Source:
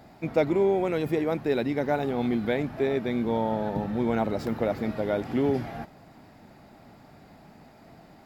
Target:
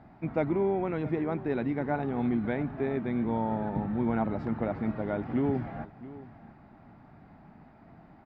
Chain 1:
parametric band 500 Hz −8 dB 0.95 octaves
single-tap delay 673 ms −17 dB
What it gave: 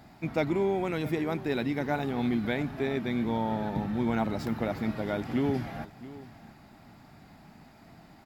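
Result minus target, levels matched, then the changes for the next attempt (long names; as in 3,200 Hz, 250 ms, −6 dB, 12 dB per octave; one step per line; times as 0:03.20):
2,000 Hz band +4.0 dB
add first: low-pass filter 1,600 Hz 12 dB per octave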